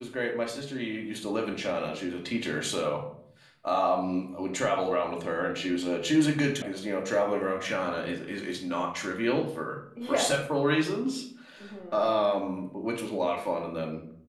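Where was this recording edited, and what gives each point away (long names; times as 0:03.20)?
0:06.62: cut off before it has died away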